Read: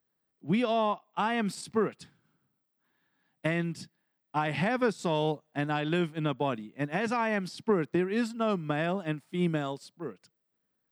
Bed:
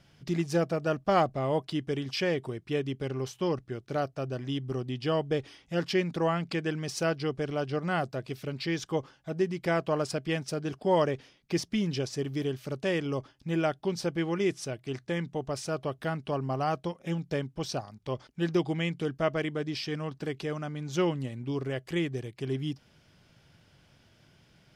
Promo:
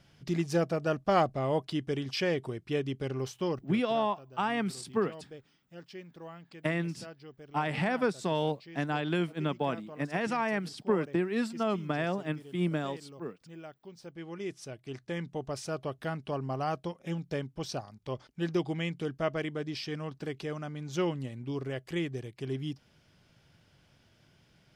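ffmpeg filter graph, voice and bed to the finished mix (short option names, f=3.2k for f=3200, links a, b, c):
-filter_complex "[0:a]adelay=3200,volume=-1.5dB[a];[1:a]volume=14.5dB,afade=t=out:st=3.34:d=0.7:silence=0.133352,afade=t=in:st=13.97:d=1.41:silence=0.16788[b];[a][b]amix=inputs=2:normalize=0"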